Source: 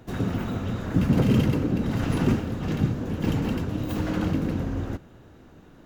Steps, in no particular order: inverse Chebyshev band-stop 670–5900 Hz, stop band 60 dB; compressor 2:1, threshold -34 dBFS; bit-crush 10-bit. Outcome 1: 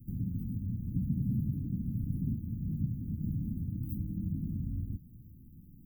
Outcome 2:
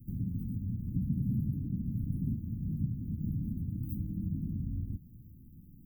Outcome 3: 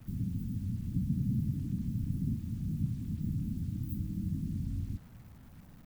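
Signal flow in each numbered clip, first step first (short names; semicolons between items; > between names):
compressor > bit-crush > inverse Chebyshev band-stop; bit-crush > compressor > inverse Chebyshev band-stop; compressor > inverse Chebyshev band-stop > bit-crush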